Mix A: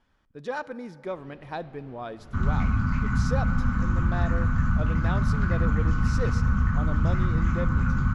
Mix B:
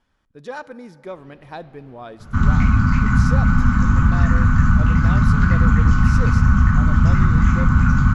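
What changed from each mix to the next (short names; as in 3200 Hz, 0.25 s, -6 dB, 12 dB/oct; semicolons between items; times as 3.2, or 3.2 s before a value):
second sound +9.0 dB; master: add high shelf 8200 Hz +9 dB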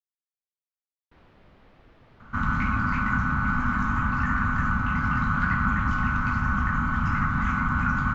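speech: muted; second sound: add tone controls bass -14 dB, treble -14 dB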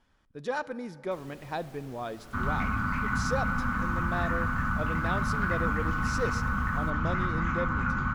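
speech: unmuted; first sound: remove air absorption 340 m; second sound -4.5 dB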